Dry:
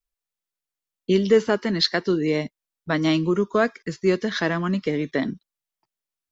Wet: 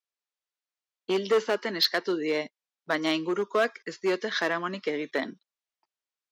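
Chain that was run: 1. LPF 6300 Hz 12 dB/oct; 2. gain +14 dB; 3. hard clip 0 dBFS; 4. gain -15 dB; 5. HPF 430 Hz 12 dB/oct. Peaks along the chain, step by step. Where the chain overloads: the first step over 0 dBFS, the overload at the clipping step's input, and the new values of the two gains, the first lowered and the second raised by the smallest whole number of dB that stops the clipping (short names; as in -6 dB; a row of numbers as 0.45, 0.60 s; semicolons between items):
-6.5, +7.5, 0.0, -15.0, -11.0 dBFS; step 2, 7.5 dB; step 2 +6 dB, step 4 -7 dB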